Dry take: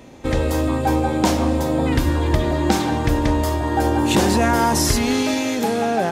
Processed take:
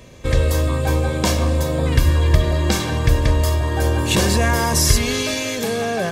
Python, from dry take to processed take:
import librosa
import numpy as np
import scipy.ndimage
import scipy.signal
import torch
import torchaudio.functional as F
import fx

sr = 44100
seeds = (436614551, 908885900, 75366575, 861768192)

y = fx.peak_eq(x, sr, hz=690.0, db=-7.0, octaves=2.0)
y = y + 0.59 * np.pad(y, (int(1.8 * sr / 1000.0), 0))[:len(y)]
y = y * 10.0 ** (2.5 / 20.0)